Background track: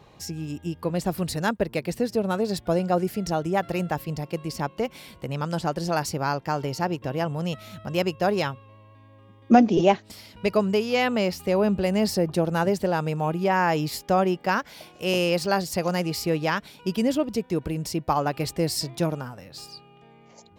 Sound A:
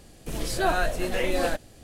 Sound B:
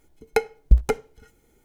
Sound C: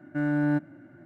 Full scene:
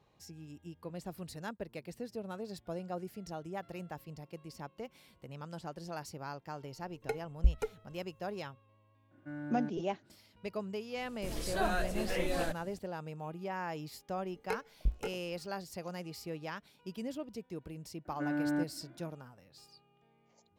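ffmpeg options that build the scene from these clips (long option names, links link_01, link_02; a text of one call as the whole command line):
ffmpeg -i bed.wav -i cue0.wav -i cue1.wav -i cue2.wav -filter_complex "[2:a]asplit=2[link_01][link_02];[3:a]asplit=2[link_03][link_04];[0:a]volume=-17dB[link_05];[link_01]aphaser=in_gain=1:out_gain=1:delay=3:decay=0.5:speed=1.5:type=triangular[link_06];[link_02]flanger=delay=20:depth=4.7:speed=1.8[link_07];[link_04]highpass=frequency=180:width=0.5412,highpass=frequency=180:width=1.3066[link_08];[link_06]atrim=end=1.64,asetpts=PTS-STARTPTS,volume=-17dB,afade=type=in:duration=0.004:curve=hsin,afade=type=out:start_time=1.636:duration=0.004:curve=hsin,adelay=6730[link_09];[link_03]atrim=end=1.05,asetpts=PTS-STARTPTS,volume=-16dB,afade=type=in:duration=0.004:curve=hsin,afade=type=out:start_time=1.046:duration=0.004:curve=hsin,adelay=9110[link_10];[1:a]atrim=end=1.83,asetpts=PTS-STARTPTS,volume=-8.5dB,afade=type=in:duration=0.004:curve=hsin,afade=type=out:start_time=1.826:duration=0.004:curve=hsin,adelay=10960[link_11];[link_07]atrim=end=1.64,asetpts=PTS-STARTPTS,volume=-12.5dB,afade=type=in:duration=0.004:curve=hsin,afade=type=out:start_time=1.636:duration=0.004:curve=hsin,adelay=14140[link_12];[link_08]atrim=end=1.05,asetpts=PTS-STARTPTS,volume=-7dB,afade=type=in:duration=0.004:curve=hsin,afade=type=out:start_time=1.046:duration=0.004:curve=hsin,adelay=18050[link_13];[link_05][link_09][link_10][link_11][link_12][link_13]amix=inputs=6:normalize=0" out.wav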